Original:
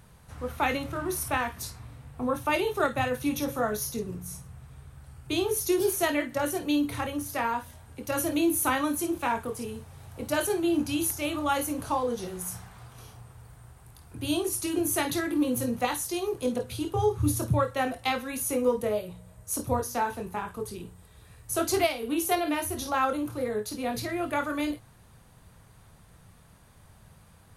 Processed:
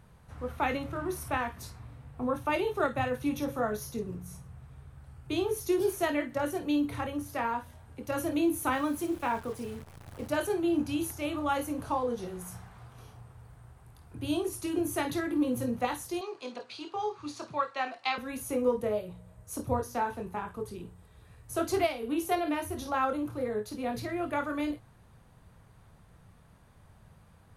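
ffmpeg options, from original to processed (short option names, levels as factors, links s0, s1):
-filter_complex "[0:a]asettb=1/sr,asplit=3[s0][s1][s2];[s0]atrim=end=8.724[s3];[s1]atrim=start=8.72:end=10.31,asetpts=PTS-STARTPTS,afade=t=in:d=0.004:c=qsin,afade=t=out:st=1.586:d=0.004:c=qsin,acrusher=bits=8:dc=4:mix=0:aa=0.000001[s4];[s2]atrim=start=10.306[s5];[s3][s4]acrossfade=d=0.004:c1=hsin:c2=qsin[s6];[s6][s5]acrossfade=d=0.004:c1=qsin:c2=hsin,asettb=1/sr,asplit=3[s7][s8][s9];[s7]atrim=end=16.214[s10];[s8]atrim=start=16.21:end=18.18,asetpts=PTS-STARTPTS,afade=t=in:d=0.004:c=qsin,afade=t=out:st=1.966:d=0.004:c=qsin,highpass=490,equalizer=f=490:t=q:w=4:g=-8,equalizer=f=1100:t=q:w=4:g=3,equalizer=f=2500:t=q:w=4:g=5,equalizer=f=4500:t=q:w=4:g=10,lowpass=f=7100:w=0.5412,lowpass=f=7100:w=1.3066[s11];[s9]atrim=start=18.176[s12];[s10][s11]acrossfade=d=0.004:c1=hsin:c2=qsin[s13];[s13][s12]acrossfade=d=0.004:c1=qsin:c2=hsin,highshelf=f=3300:g=-9,volume=0.794"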